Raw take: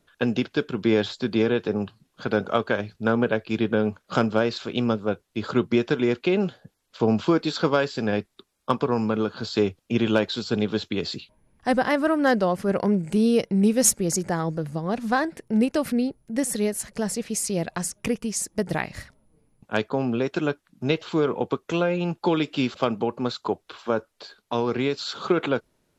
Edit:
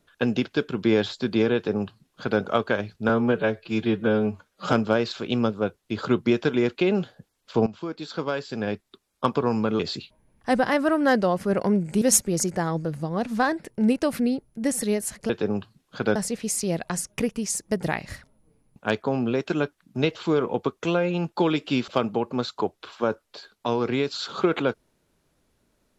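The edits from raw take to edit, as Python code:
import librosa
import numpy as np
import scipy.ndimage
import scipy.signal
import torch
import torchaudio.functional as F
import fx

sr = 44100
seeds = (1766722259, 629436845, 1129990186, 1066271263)

y = fx.edit(x, sr, fx.duplicate(start_s=1.55, length_s=0.86, to_s=17.02),
    fx.stretch_span(start_s=3.09, length_s=1.09, factor=1.5),
    fx.fade_in_from(start_s=7.12, length_s=1.59, floor_db=-17.0),
    fx.cut(start_s=9.25, length_s=1.73),
    fx.cut(start_s=13.2, length_s=0.54), tone=tone)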